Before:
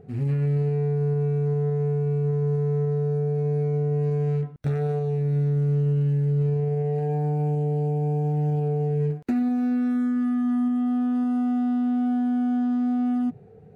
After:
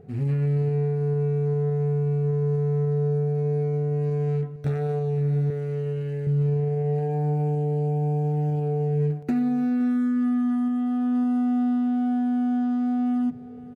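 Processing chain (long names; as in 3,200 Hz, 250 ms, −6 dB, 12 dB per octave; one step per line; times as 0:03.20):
0:05.50–0:06.27: octave-band graphic EQ 125/250/500/1,000/2,000 Hz −8/−8/+7/−3/+7 dB
single-tap delay 515 ms −17.5 dB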